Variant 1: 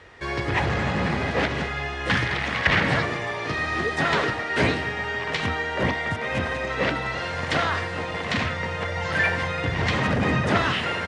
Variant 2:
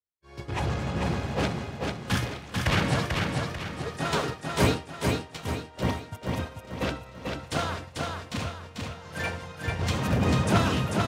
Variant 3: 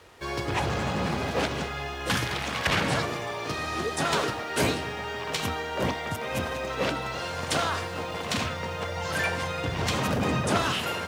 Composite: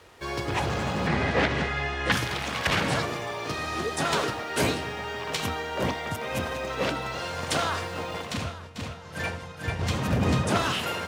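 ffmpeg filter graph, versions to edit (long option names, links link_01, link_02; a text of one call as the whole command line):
ffmpeg -i take0.wav -i take1.wav -i take2.wav -filter_complex "[2:a]asplit=3[link_01][link_02][link_03];[link_01]atrim=end=1.072[link_04];[0:a]atrim=start=1.068:end=2.122[link_05];[link_02]atrim=start=2.118:end=8.41[link_06];[1:a]atrim=start=8.17:end=10.59[link_07];[link_03]atrim=start=10.35[link_08];[link_04][link_05]acrossfade=duration=0.004:curve1=hsin:curve2=hsin[link_09];[link_09][link_06]acrossfade=duration=0.004:curve1=hsin:curve2=hsin[link_10];[link_10][link_07]acrossfade=duration=0.24:curve1=tri:curve2=tri[link_11];[link_11][link_08]acrossfade=duration=0.24:curve1=tri:curve2=tri" out.wav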